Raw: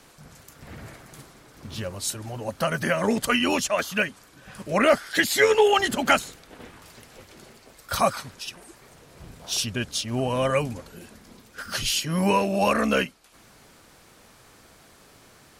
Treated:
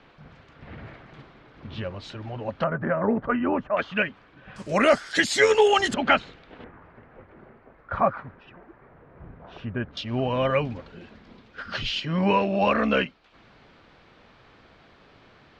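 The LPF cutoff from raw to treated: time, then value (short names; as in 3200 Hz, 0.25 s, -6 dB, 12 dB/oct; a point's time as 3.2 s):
LPF 24 dB/oct
3400 Hz
from 2.64 s 1500 Hz
from 3.77 s 3100 Hz
from 4.56 s 8000 Hz
from 5.94 s 3500 Hz
from 6.64 s 1800 Hz
from 9.97 s 3800 Hz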